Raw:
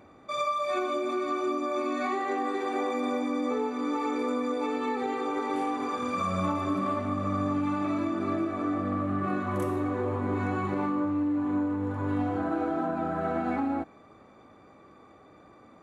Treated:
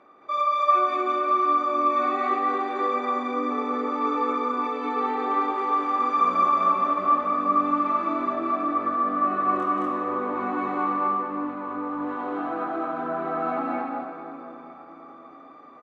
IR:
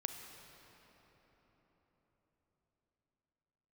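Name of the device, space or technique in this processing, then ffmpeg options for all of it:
station announcement: -filter_complex "[0:a]highpass=330,lowpass=3.7k,equalizer=f=1.2k:t=o:w=0.2:g=10,aecho=1:1:183.7|218.7:0.355|1[a];[1:a]atrim=start_sample=2205[b];[a][b]afir=irnorm=-1:irlink=0"

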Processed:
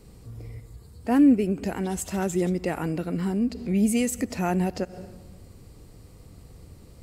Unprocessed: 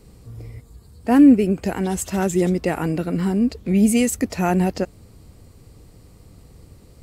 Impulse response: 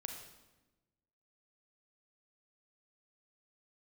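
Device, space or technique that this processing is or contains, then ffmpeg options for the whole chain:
ducked reverb: -filter_complex "[0:a]asplit=3[a][b][c];[1:a]atrim=start_sample=2205[d];[b][d]afir=irnorm=-1:irlink=0[e];[c]apad=whole_len=309807[f];[e][f]sidechaincompress=threshold=-36dB:ratio=8:attack=6.2:release=100,volume=1dB[g];[a][g]amix=inputs=2:normalize=0,volume=-6.5dB"

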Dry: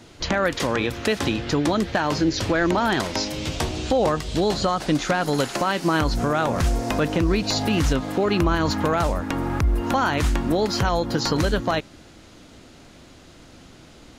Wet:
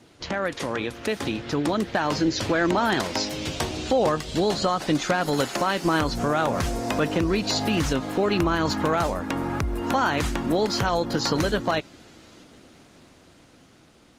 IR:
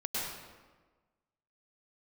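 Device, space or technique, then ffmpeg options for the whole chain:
video call: -af "highpass=f=120:p=1,dynaudnorm=f=410:g=7:m=4dB,volume=-4.5dB" -ar 48000 -c:a libopus -b:a 24k

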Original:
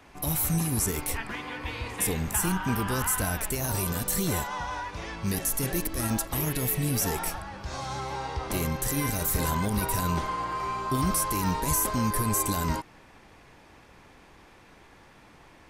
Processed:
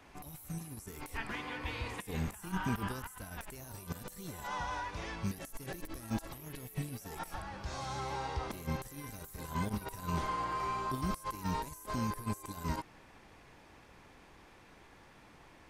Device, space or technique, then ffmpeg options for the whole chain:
de-esser from a sidechain: -filter_complex "[0:a]asplit=2[a][b];[b]highpass=6.6k,apad=whole_len=692290[c];[a][c]sidechaincompress=threshold=-47dB:ratio=16:attack=4.3:release=28,volume=-4.5dB"

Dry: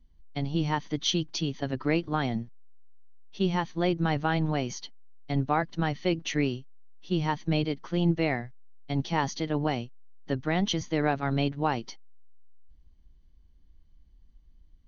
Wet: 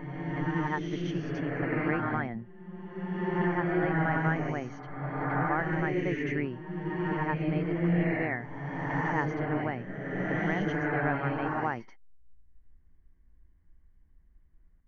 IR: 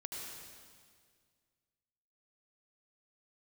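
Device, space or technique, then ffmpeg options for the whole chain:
reverse reverb: -filter_complex "[0:a]areverse[a];[1:a]atrim=start_sample=2205[b];[a][b]afir=irnorm=-1:irlink=0,areverse,highshelf=f=2.7k:t=q:w=3:g=-14,volume=-1.5dB"

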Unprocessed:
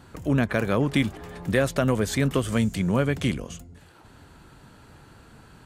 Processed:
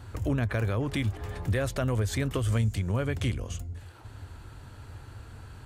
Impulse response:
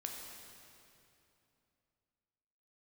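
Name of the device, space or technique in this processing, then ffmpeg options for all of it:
car stereo with a boomy subwoofer: -af "lowshelf=f=130:t=q:w=3:g=6.5,alimiter=limit=-19dB:level=0:latency=1:release=269"

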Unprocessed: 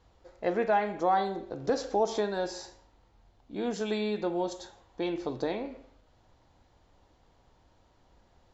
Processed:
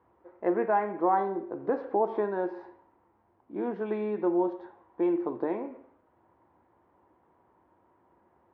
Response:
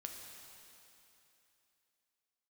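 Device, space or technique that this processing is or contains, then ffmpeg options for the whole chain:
bass cabinet: -af "highpass=f=89:w=0.5412,highpass=f=89:w=1.3066,equalizer=f=93:t=q:w=4:g=-4,equalizer=f=130:t=q:w=4:g=-8,equalizer=f=350:t=q:w=4:g=9,equalizer=f=1k:t=q:w=4:g=8,lowpass=f=2k:w=0.5412,lowpass=f=2k:w=1.3066,volume=-2dB"

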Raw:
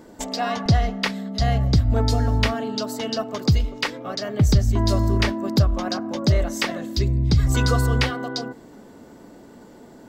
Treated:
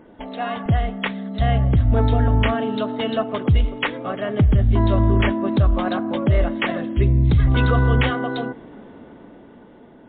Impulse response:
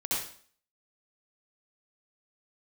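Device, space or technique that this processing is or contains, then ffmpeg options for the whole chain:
low-bitrate web radio: -af "dynaudnorm=f=320:g=9:m=11.5dB,alimiter=limit=-7.5dB:level=0:latency=1:release=10,volume=-1dB" -ar 8000 -c:a libmp3lame -b:a 40k

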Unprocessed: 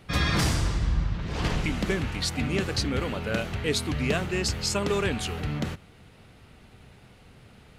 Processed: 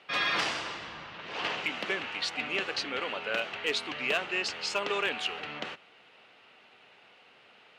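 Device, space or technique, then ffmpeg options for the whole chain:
megaphone: -af "highpass=570,lowpass=4k,equalizer=f=2.8k:t=o:w=0.4:g=6,asoftclip=type=hard:threshold=-19.5dB"

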